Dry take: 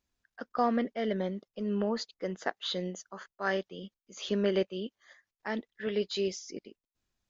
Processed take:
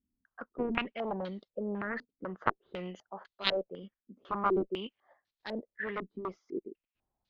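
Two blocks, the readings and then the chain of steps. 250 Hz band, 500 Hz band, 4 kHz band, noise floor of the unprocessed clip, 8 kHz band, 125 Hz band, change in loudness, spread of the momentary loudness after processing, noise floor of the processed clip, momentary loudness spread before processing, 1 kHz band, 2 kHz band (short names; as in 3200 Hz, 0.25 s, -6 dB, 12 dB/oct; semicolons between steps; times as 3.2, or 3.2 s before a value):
-4.5 dB, -4.0 dB, -1.5 dB, under -85 dBFS, n/a, -5.0 dB, -3.0 dB, 15 LU, under -85 dBFS, 16 LU, +0.5 dB, +0.5 dB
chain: added harmonics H 3 -7 dB, 7 -37 dB, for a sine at -15 dBFS; stepped low-pass 4 Hz 250–4000 Hz; gain +4 dB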